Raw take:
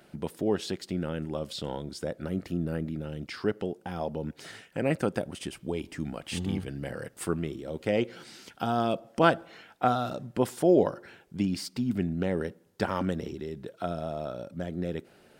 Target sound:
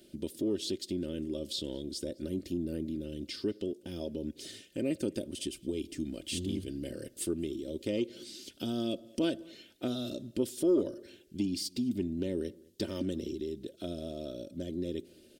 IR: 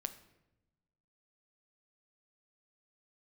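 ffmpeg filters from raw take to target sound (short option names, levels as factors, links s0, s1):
-filter_complex "[0:a]firequalizer=gain_entry='entry(190,0);entry(410,4);entry(850,-21);entry(3300,4)':delay=0.05:min_phase=1,acontrast=72,aecho=1:1:3.3:0.56,acompressor=threshold=0.0562:ratio=1.5,asplit=2[s0][s1];[s1]adelay=209.9,volume=0.0562,highshelf=f=4000:g=-4.72[s2];[s0][s2]amix=inputs=2:normalize=0,volume=0.355"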